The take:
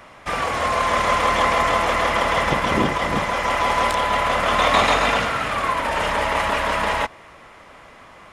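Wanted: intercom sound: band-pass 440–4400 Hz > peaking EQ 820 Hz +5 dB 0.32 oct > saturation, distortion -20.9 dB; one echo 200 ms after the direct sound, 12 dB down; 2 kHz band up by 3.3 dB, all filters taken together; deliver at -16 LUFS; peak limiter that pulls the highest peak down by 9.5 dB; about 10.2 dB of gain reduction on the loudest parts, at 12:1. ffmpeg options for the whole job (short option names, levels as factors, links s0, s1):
-af "equalizer=f=2000:t=o:g=4,acompressor=threshold=0.0891:ratio=12,alimiter=limit=0.0944:level=0:latency=1,highpass=440,lowpass=4400,equalizer=f=820:t=o:w=0.32:g=5,aecho=1:1:200:0.251,asoftclip=threshold=0.0891,volume=4.73"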